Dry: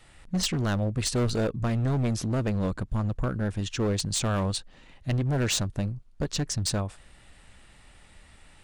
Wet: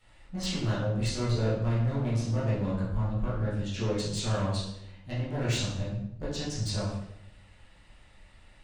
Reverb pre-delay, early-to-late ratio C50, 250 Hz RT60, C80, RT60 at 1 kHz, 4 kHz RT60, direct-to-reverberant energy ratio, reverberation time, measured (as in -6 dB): 11 ms, 1.5 dB, 1.0 s, 5.0 dB, 0.70 s, 0.65 s, -10.0 dB, 0.75 s